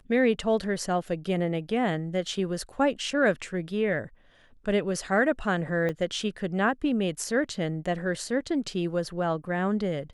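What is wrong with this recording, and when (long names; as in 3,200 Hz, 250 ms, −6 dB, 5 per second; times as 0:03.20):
0:05.89: drop-out 4.2 ms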